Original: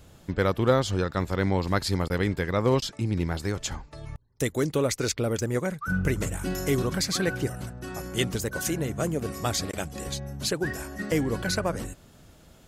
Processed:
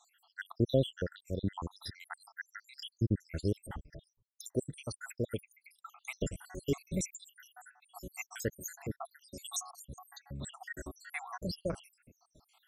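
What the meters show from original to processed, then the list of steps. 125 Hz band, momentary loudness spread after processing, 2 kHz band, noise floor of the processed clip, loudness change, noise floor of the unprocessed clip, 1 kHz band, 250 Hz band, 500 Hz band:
-10.5 dB, 16 LU, -13.0 dB, -82 dBFS, -11.0 dB, -54 dBFS, -15.0 dB, -11.0 dB, -11.5 dB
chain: random spectral dropouts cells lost 84%; random-step tremolo; gain -1.5 dB

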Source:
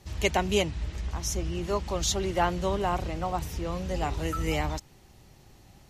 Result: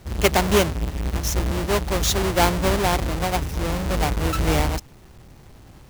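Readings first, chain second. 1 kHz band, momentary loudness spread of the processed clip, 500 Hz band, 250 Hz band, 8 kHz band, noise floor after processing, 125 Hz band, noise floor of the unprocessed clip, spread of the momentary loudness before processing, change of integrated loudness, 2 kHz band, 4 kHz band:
+6.0 dB, 7 LU, +6.5 dB, +7.5 dB, +6.5 dB, -47 dBFS, +8.5 dB, -56 dBFS, 7 LU, +7.5 dB, +8.5 dB, +7.5 dB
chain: half-waves squared off; gain +3 dB

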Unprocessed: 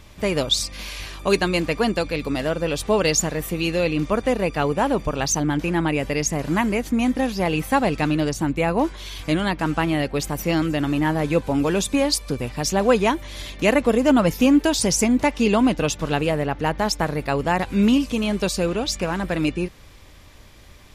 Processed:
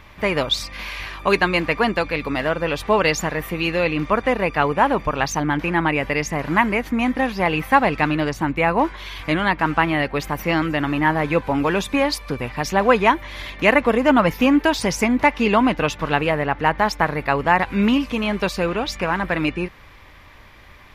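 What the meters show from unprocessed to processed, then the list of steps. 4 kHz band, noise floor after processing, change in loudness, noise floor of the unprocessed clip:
-0.5 dB, -45 dBFS, +1.5 dB, -45 dBFS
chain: graphic EQ 1000/2000/8000 Hz +7/+8/-10 dB; gain -1 dB

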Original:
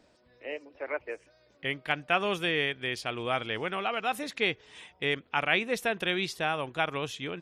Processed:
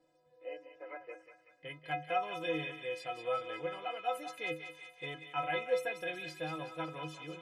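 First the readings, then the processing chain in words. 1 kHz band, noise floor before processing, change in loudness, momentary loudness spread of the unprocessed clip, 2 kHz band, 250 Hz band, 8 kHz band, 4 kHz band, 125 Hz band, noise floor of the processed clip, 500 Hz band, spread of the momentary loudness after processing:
-5.5 dB, -64 dBFS, -8.0 dB, 13 LU, -11.0 dB, -9.5 dB, -11.5 dB, -12.5 dB, -8.5 dB, -70 dBFS, -5.5 dB, 13 LU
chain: bell 540 Hz +9.5 dB 1.6 oct; metallic resonator 150 Hz, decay 0.42 s, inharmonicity 0.03; thinning echo 0.187 s, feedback 64%, high-pass 830 Hz, level -8 dB

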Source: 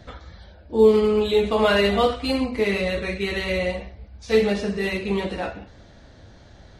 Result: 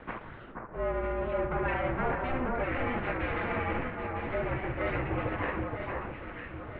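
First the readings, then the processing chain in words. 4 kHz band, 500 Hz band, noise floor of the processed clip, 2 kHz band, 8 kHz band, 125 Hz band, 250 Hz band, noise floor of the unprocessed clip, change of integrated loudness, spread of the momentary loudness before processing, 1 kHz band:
-21.0 dB, -13.0 dB, -46 dBFS, -6.5 dB, under -35 dB, -3.0 dB, -11.0 dB, -48 dBFS, -11.0 dB, 11 LU, -4.0 dB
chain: treble ducked by the level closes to 1900 Hz, closed at -17 dBFS; dynamic EQ 1400 Hz, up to +7 dB, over -45 dBFS, Q 3.6; reverse; compressor 4:1, threshold -33 dBFS, peak gain reduction 18.5 dB; reverse; full-wave rectifier; mistuned SSB -270 Hz 190–2700 Hz; on a send: echo with dull and thin repeats by turns 0.477 s, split 1600 Hz, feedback 64%, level -2.5 dB; on the sum: gain +6.5 dB

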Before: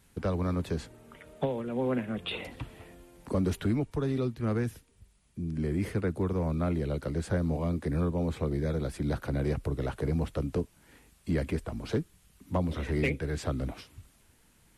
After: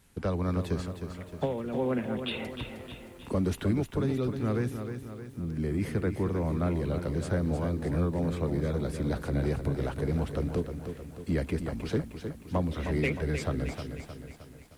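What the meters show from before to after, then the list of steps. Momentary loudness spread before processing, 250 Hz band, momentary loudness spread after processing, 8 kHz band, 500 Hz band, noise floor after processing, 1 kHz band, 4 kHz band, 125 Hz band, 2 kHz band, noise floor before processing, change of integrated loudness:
9 LU, +1.0 dB, 11 LU, +1.0 dB, +1.0 dB, -49 dBFS, +1.0 dB, +1.0 dB, +1.0 dB, +1.0 dB, -64 dBFS, +0.5 dB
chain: lo-fi delay 0.31 s, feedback 55%, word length 10-bit, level -8 dB

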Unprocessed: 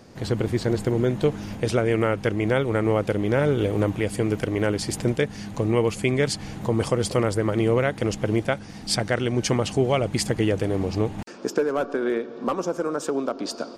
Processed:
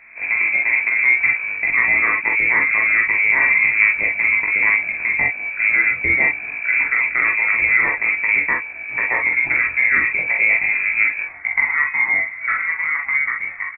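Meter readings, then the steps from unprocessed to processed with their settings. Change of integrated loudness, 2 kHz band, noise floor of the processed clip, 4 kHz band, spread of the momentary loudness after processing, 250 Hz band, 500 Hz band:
+8.5 dB, +20.5 dB, -32 dBFS, under -30 dB, 6 LU, -15.5 dB, -15.5 dB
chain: notches 60/120/180/240 Hz; short-mantissa float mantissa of 2-bit; air absorption 420 m; doubler 19 ms -3 dB; on a send: tapped delay 43/48 ms -4.5/-6 dB; on the sum: inverted band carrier 2500 Hz; gain +3 dB

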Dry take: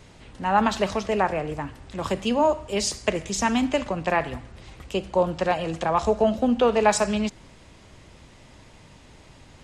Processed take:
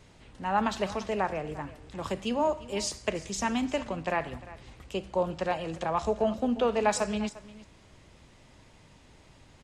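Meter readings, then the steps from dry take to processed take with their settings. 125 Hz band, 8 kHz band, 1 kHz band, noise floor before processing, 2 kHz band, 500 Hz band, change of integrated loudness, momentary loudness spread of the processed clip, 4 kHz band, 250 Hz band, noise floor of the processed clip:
-6.5 dB, -6.5 dB, -6.5 dB, -50 dBFS, -6.5 dB, -6.5 dB, -6.5 dB, 13 LU, -6.5 dB, -6.5 dB, -57 dBFS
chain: echo 0.35 s -18 dB; gain -6.5 dB

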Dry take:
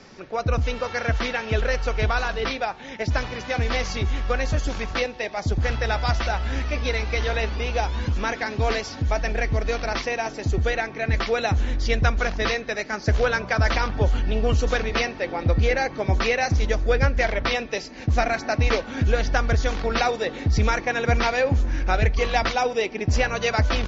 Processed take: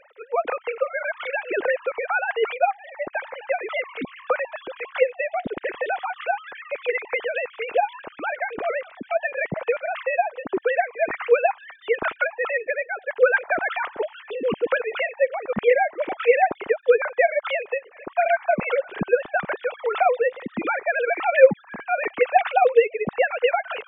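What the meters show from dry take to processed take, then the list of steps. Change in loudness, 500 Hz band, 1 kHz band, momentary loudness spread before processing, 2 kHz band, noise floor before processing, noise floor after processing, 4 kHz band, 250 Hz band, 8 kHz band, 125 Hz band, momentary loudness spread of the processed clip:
+0.5 dB, +4.5 dB, +2.5 dB, 5 LU, +1.0 dB, -38 dBFS, -50 dBFS, -9.5 dB, -6.0 dB, n/a, -21.0 dB, 10 LU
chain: sine-wave speech; gain -1 dB

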